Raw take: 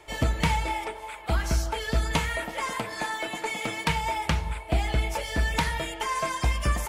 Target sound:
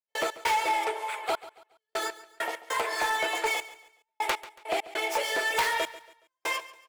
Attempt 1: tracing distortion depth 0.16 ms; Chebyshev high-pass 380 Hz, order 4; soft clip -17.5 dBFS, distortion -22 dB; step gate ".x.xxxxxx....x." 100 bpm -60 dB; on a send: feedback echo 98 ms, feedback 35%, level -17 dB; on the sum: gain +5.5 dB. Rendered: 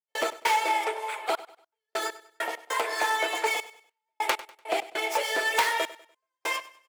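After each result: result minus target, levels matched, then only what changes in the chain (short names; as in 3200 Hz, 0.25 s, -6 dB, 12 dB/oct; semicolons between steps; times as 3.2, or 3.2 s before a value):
echo 42 ms early; soft clip: distortion -8 dB
change: feedback echo 0.14 s, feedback 35%, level -17 dB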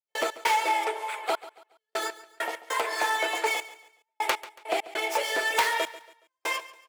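soft clip: distortion -8 dB
change: soft clip -24.5 dBFS, distortion -14 dB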